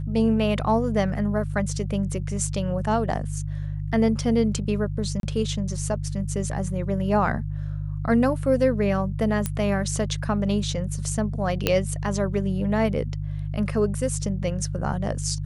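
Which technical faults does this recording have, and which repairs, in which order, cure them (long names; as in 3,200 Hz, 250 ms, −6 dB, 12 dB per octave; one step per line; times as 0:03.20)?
mains hum 50 Hz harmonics 3 −29 dBFS
0:05.20–0:05.23: drop-out 32 ms
0:09.46: click −11 dBFS
0:11.67: click −6 dBFS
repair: click removal
hum removal 50 Hz, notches 3
repair the gap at 0:05.20, 32 ms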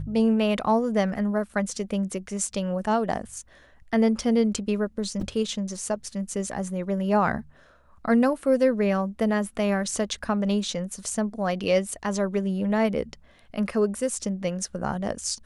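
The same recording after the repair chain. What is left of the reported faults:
none of them is left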